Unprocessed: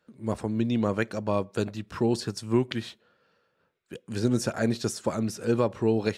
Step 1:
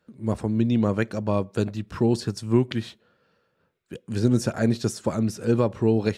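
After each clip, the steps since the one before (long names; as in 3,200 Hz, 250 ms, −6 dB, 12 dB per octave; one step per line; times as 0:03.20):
low-shelf EQ 290 Hz +7 dB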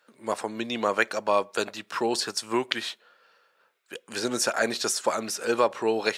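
high-pass filter 770 Hz 12 dB per octave
level +8.5 dB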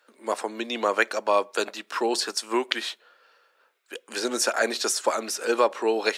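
high-pass filter 250 Hz 24 dB per octave
level +1.5 dB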